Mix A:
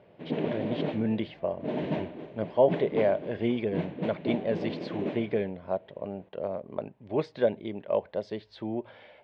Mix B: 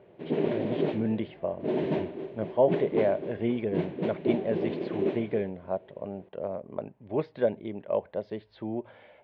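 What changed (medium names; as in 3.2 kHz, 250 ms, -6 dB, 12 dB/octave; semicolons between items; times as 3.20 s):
speech: add distance through air 270 m; background: add peaking EQ 380 Hz +11.5 dB 0.25 oct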